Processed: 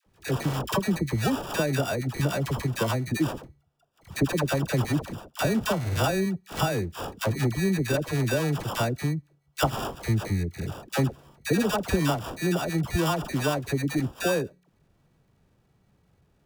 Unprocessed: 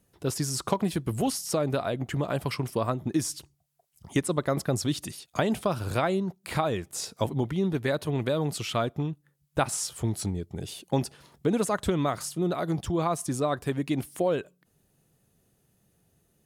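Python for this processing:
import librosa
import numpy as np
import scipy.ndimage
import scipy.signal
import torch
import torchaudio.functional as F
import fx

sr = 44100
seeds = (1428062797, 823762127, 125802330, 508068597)

y = fx.low_shelf(x, sr, hz=120.0, db=9.0)
y = fx.sample_hold(y, sr, seeds[0], rate_hz=2100.0, jitter_pct=0)
y = fx.dispersion(y, sr, late='lows', ms=62.0, hz=740.0)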